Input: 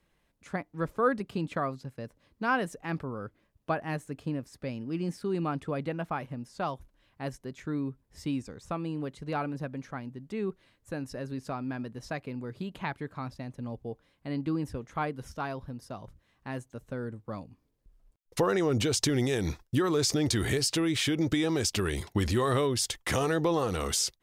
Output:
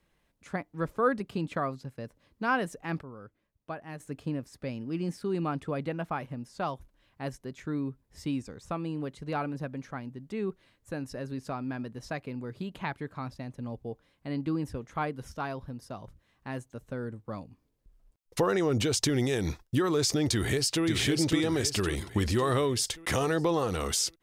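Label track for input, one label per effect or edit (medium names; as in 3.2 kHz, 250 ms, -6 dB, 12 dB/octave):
3.010000	4.000000	gain -8.5 dB
20.320000	20.850000	echo throw 550 ms, feedback 50%, level -4.5 dB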